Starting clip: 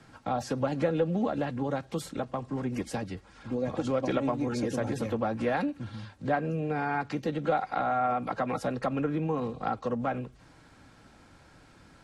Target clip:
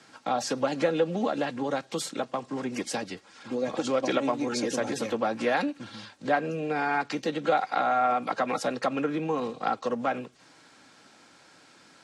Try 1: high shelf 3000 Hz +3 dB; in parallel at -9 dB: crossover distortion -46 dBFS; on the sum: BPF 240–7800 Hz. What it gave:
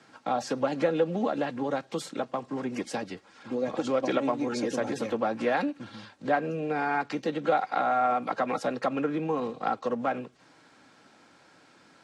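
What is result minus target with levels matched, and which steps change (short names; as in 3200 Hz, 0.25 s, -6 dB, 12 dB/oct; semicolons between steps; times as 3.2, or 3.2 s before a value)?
8000 Hz band -6.5 dB
change: high shelf 3000 Hz +11 dB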